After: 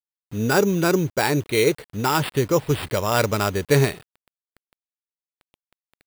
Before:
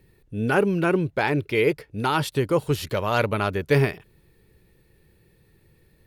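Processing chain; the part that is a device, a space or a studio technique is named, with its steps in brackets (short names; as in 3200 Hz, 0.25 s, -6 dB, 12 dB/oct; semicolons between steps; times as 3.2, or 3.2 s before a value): early 8-bit sampler (sample-rate reducer 6300 Hz, jitter 0%; bit-crush 8-bit); gain +2 dB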